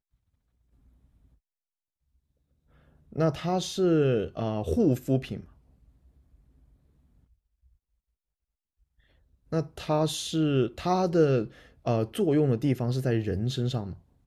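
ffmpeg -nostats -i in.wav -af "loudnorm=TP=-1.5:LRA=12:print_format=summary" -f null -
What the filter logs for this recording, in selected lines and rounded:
Input Integrated:    -27.4 LUFS
Input True Peak:     -11.3 dBTP
Input LRA:             9.6 LU
Input Threshold:     -39.1 LUFS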